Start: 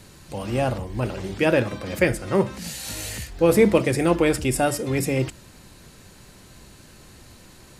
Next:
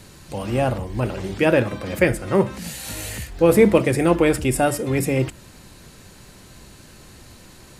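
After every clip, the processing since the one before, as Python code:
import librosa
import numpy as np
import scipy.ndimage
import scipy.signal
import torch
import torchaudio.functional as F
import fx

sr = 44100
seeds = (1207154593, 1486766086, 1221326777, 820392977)

y = fx.dynamic_eq(x, sr, hz=5200.0, q=1.1, threshold_db=-46.0, ratio=4.0, max_db=-5)
y = F.gain(torch.from_numpy(y), 2.5).numpy()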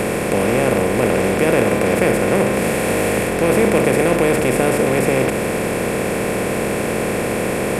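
y = fx.bin_compress(x, sr, power=0.2)
y = F.gain(torch.from_numpy(y), -6.0).numpy()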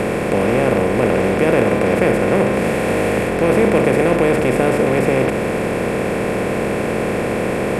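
y = fx.lowpass(x, sr, hz=3100.0, slope=6)
y = F.gain(torch.from_numpy(y), 1.0).numpy()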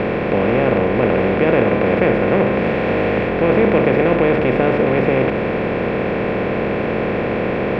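y = scipy.signal.sosfilt(scipy.signal.butter(4, 3700.0, 'lowpass', fs=sr, output='sos'), x)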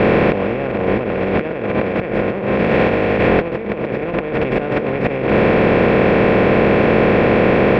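y = fx.over_compress(x, sr, threshold_db=-19.0, ratio=-0.5)
y = F.gain(torch.from_numpy(y), 4.0).numpy()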